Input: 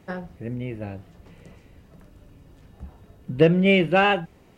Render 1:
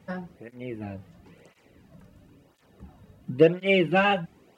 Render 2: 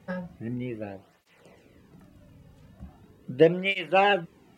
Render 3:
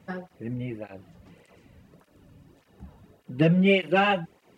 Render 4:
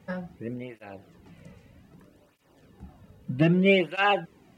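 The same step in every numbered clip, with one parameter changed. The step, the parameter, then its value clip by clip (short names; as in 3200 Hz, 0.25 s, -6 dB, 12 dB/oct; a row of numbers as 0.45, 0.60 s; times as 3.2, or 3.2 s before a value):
tape flanging out of phase, nulls at: 0.97, 0.4, 1.7, 0.63 Hz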